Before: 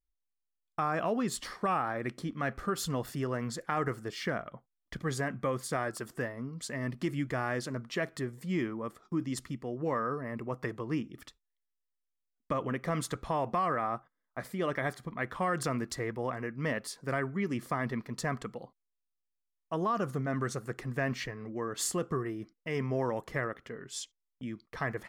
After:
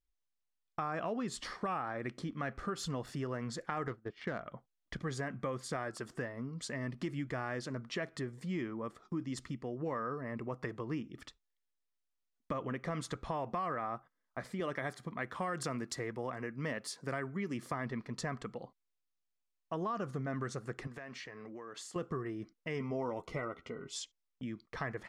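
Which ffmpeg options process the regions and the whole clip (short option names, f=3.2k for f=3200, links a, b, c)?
-filter_complex "[0:a]asettb=1/sr,asplit=3[a][b][c];[a]atrim=end=3.874[d];[b]atrim=start=3.87:end=4.41,asetpts=PTS-STARTPTS,afade=t=in:d=0.004:c=qsin,afade=t=out:st=0.536:d=0.004:c=qsin,agate=range=-33dB:threshold=-36dB:ratio=3:release=100:detection=peak,adynamicsmooth=sensitivity=6.5:basefreq=1.9k[e];[c]atrim=start=4.406[f];[d][e]acrossfade=d=0.004:c1=hsin:c2=qsin[g];[g][f]acrossfade=d=0.004:c1=qsin:c2=hsin,asettb=1/sr,asplit=3[h][i][j];[h]atrim=end=14.604[k];[i]atrim=start=14.6:end=17.72,asetpts=PTS-STARTPTS,afade=t=in:d=0.004:c=qsin,afade=t=out:st=3.116:d=0.004:c=qsin,highpass=96,highshelf=f=8.9k:g=11[l];[j]atrim=start=17.716[m];[k][l]acrossfade=d=0.004:c1=hsin:c2=qsin[n];[n][m]acrossfade=d=0.004:c1=qsin:c2=hsin,asettb=1/sr,asplit=3[o][p][q];[o]atrim=end=20.874[r];[p]atrim=start=20.87:end=21.96,asetpts=PTS-STARTPTS,afade=t=in:d=0.004:c=qsin,afade=t=out:st=1.086:d=0.004:c=qsin,highpass=f=410:p=1,acompressor=threshold=-43dB:ratio=6:attack=3.2:release=140:knee=1:detection=peak[s];[q]atrim=start=21.956[t];[r][s]acrossfade=d=0.004:c1=hsin:c2=qsin[u];[u][t]acrossfade=d=0.004:c1=qsin:c2=hsin,asettb=1/sr,asplit=3[v][w][x];[v]atrim=end=22.794[y];[w]atrim=start=22.79:end=23.96,asetpts=PTS-STARTPTS,afade=t=in:d=0.004:c=qsin,afade=t=out:st=1.166:d=0.004:c=qsin,asuperstop=centerf=1700:order=12:qfactor=4.6,equalizer=f=7.7k:w=5.9:g=-2.5,asplit=2[z][aa];[aa]adelay=12,volume=-8dB[ab];[z][ab]amix=inputs=2:normalize=0,atrim=end_sample=51597[ac];[x]atrim=start=23.956[ad];[y][ac]acrossfade=d=0.004:c1=hsin:c2=qsin[ae];[ae][ad]acrossfade=d=0.004:c1=qsin:c2=hsin,lowpass=7.4k,acompressor=threshold=-38dB:ratio=2"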